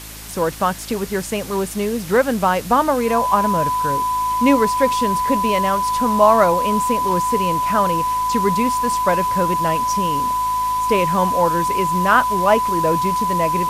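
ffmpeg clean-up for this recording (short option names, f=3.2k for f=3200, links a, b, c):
-af "adeclick=t=4,bandreject=f=53.5:t=h:w=4,bandreject=f=107:t=h:w=4,bandreject=f=160.5:t=h:w=4,bandreject=f=214:t=h:w=4,bandreject=f=267.5:t=h:w=4,bandreject=f=321:t=h:w=4,bandreject=f=1k:w=30,afwtdn=0.018"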